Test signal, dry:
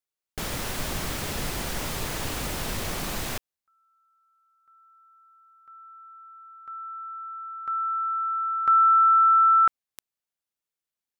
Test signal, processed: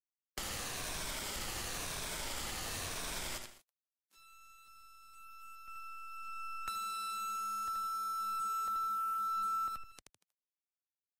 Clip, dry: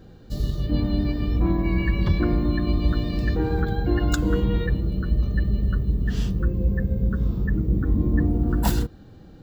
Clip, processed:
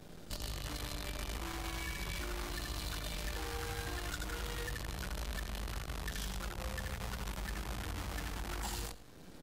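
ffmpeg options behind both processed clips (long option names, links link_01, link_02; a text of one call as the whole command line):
ffmpeg -i in.wav -filter_complex "[0:a]afftfilt=real='re*pow(10,7/40*sin(2*PI*(1.6*log(max(b,1)*sr/1024/100)/log(2)-(-0.97)*(pts-256)/sr)))':imag='im*pow(10,7/40*sin(2*PI*(1.6*log(max(b,1)*sr/1024/100)/log(2)-(-0.97)*(pts-256)/sr)))':win_size=1024:overlap=0.75,asoftclip=type=tanh:threshold=-9.5dB,aresample=22050,aresample=44100,lowshelf=frequency=190:gain=-7.5,acompressor=threshold=-41dB:ratio=2:attack=5:release=810:knee=6:detection=peak,highshelf=frequency=2800:gain=2,aecho=1:1:79|158|237|316:0.596|0.208|0.073|0.0255,acrusher=bits=7:dc=4:mix=0:aa=0.000001,acrossover=split=84|630[link_01][link_02][link_03];[link_01]acompressor=threshold=-42dB:ratio=4[link_04];[link_02]acompressor=threshold=-52dB:ratio=4[link_05];[link_03]acompressor=threshold=-40dB:ratio=4[link_06];[link_04][link_05][link_06]amix=inputs=3:normalize=0,volume=1.5dB" -ar 48000 -c:a libvorbis -b:a 48k out.ogg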